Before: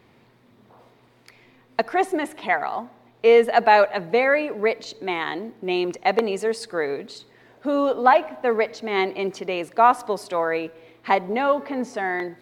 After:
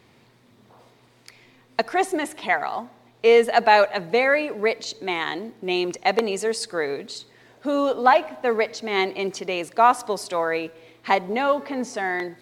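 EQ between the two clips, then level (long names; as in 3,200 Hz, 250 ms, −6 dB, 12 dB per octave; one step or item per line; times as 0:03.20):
parametric band 110 Hz +2 dB
parametric band 7,200 Hz +8.5 dB 2 octaves
−1.0 dB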